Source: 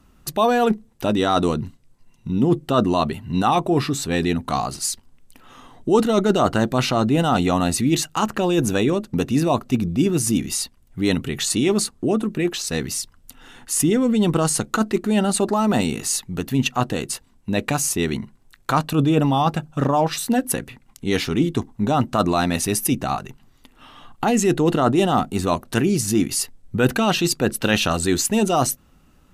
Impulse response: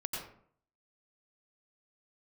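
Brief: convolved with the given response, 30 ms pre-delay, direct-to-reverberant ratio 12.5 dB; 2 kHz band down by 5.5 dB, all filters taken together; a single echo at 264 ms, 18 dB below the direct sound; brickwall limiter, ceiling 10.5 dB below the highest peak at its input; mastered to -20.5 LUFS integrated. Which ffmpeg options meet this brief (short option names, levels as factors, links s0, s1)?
-filter_complex "[0:a]equalizer=f=2000:t=o:g=-8,alimiter=limit=0.188:level=0:latency=1,aecho=1:1:264:0.126,asplit=2[s0][s1];[1:a]atrim=start_sample=2205,adelay=30[s2];[s1][s2]afir=irnorm=-1:irlink=0,volume=0.188[s3];[s0][s3]amix=inputs=2:normalize=0,volume=1.58"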